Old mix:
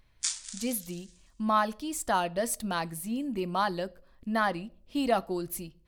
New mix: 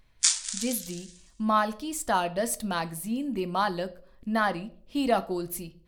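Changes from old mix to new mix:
speech: send +8.5 dB; background +8.5 dB

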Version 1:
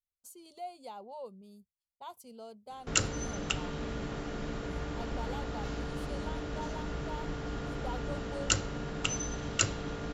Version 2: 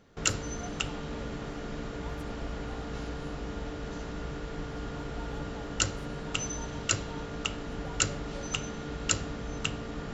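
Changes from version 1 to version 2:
speech -6.5 dB; background: entry -2.70 s

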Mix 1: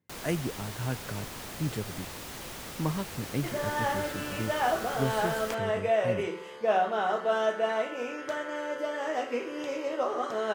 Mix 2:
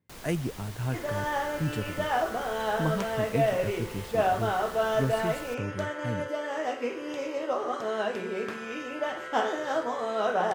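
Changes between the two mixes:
first sound -5.0 dB; second sound: entry -2.50 s; master: add bass shelf 79 Hz +9 dB

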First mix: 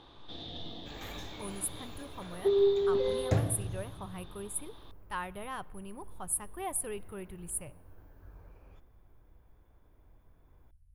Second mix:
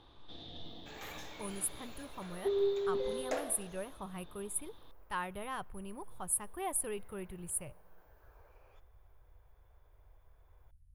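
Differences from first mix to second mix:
speech: send -6.5 dB; first sound -6.0 dB; second sound: add high-pass 440 Hz 24 dB/octave

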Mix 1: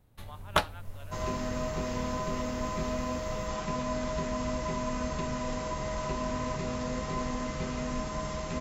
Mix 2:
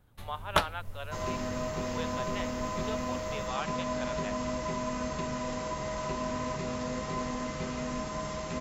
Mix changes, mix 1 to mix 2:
speech +11.5 dB; second sound: add bass shelf 71 Hz -9 dB

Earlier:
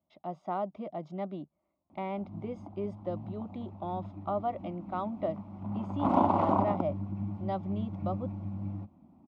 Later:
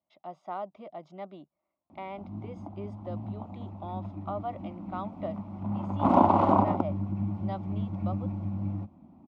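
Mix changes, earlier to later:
speech: add bass shelf 380 Hz -12 dB; background +4.5 dB

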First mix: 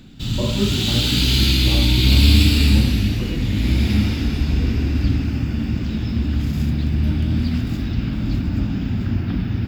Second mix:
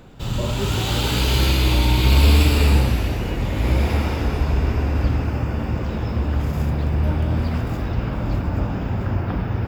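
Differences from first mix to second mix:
speech: add Bessel high-pass 420 Hz; background: add graphic EQ 250/500/1000/4000 Hz -9/+12/+10/-8 dB

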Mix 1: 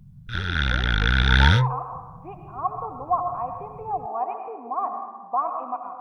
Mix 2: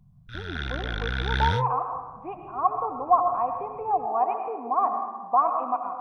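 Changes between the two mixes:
speech +3.5 dB; background -9.0 dB

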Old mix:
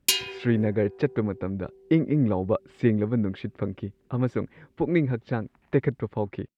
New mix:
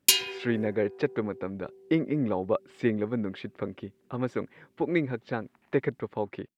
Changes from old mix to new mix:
speech: add high-pass 350 Hz 6 dB/octave; master: add treble shelf 7 kHz +4.5 dB

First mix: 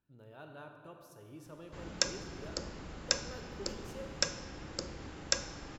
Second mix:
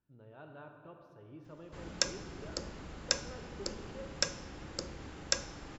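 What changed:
speech: add distance through air 310 m; background: send -6.0 dB

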